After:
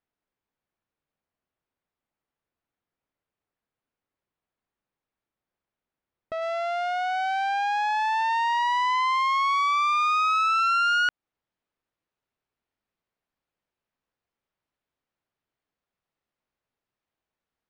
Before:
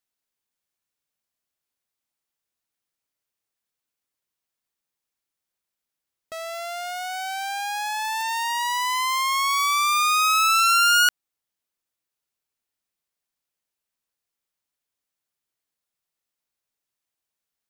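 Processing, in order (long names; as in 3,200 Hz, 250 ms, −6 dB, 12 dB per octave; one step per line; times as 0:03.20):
downward compressor 2.5 to 1, threshold −25 dBFS, peak gain reduction 7 dB
head-to-tape spacing loss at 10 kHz 41 dB, from 0:06.41 at 10 kHz 32 dB
level +7.5 dB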